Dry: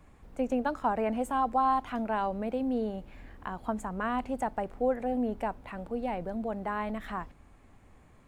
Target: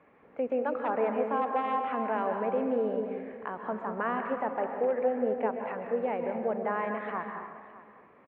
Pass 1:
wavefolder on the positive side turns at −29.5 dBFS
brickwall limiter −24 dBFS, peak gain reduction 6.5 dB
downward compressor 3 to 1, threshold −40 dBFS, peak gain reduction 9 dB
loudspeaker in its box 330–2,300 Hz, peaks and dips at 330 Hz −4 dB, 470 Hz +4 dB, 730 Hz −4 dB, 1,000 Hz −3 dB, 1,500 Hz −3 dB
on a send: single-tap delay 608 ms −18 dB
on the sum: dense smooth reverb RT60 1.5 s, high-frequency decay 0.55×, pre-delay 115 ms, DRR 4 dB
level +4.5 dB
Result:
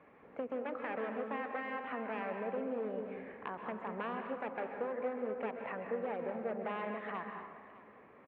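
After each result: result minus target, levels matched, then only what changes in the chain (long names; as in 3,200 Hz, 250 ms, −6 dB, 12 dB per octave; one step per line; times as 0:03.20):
wavefolder on the positive side: distortion +16 dB; downward compressor: peak gain reduction +9 dB
change: wavefolder on the positive side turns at −21.5 dBFS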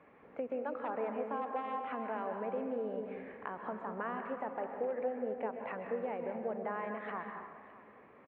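downward compressor: peak gain reduction +9.5 dB
remove: downward compressor 3 to 1, threshold −40 dBFS, peak gain reduction 9.5 dB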